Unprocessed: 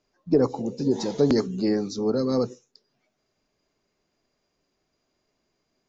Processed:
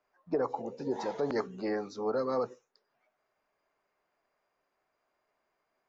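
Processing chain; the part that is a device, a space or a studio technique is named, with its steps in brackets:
DJ mixer with the lows and highs turned down (three-way crossover with the lows and the highs turned down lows −19 dB, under 590 Hz, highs −19 dB, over 2,100 Hz; brickwall limiter −25 dBFS, peak gain reduction 7.5 dB)
level +3.5 dB

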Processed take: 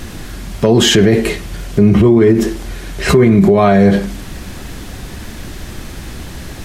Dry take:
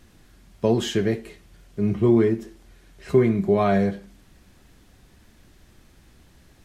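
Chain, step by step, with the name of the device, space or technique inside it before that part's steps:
loud club master (downward compressor 2.5 to 1, threshold −23 dBFS, peak gain reduction 8 dB; hard clipping −15 dBFS, distortion −30 dB; boost into a limiter +26.5 dB)
level −1 dB

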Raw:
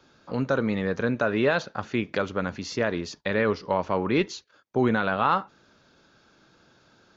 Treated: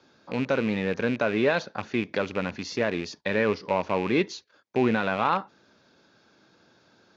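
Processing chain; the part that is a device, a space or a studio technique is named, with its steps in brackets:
car door speaker with a rattle (loose part that buzzes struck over −34 dBFS, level −24 dBFS; loudspeaker in its box 100–6,600 Hz, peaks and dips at 140 Hz −4 dB, 1,300 Hz −4 dB, 3,000 Hz −3 dB)

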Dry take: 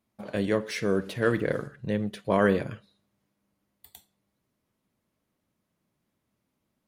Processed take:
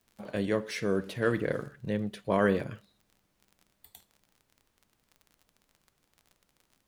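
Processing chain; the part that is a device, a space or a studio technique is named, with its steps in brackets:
vinyl LP (surface crackle 28 per second −41 dBFS; pink noise bed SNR 41 dB)
level −3 dB

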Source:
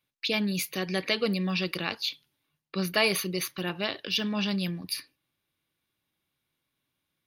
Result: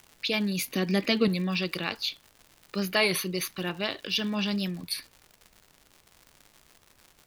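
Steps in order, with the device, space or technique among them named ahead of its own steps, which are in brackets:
warped LP (wow of a warped record 33 1/3 rpm, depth 100 cents; surface crackle 150 per second −39 dBFS; pink noise bed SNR 33 dB)
0:00.67–0:01.28: parametric band 240 Hz +12 dB 0.76 octaves

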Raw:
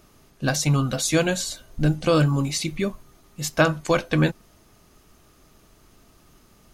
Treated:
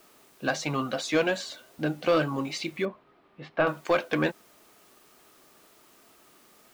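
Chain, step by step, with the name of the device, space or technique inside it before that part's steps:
tape answering machine (band-pass filter 330–3,300 Hz; soft clipping −14 dBFS, distortion −15 dB; tape wow and flutter; white noise bed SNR 30 dB)
0:02.85–0:03.67: high-frequency loss of the air 410 metres

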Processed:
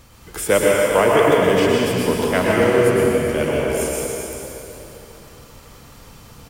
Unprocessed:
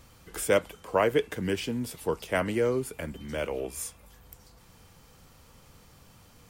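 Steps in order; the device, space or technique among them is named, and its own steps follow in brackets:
cave (single-tap delay 400 ms −11 dB; convolution reverb RT60 3.1 s, pre-delay 102 ms, DRR −4.5 dB)
level +6.5 dB

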